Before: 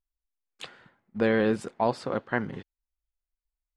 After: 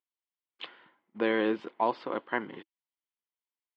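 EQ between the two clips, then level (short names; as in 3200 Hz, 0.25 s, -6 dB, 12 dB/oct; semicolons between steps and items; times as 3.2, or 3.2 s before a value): speaker cabinet 270–4100 Hz, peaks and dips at 320 Hz +8 dB, 1000 Hz +8 dB, 2100 Hz +5 dB, 3100 Hz +8 dB; -5.0 dB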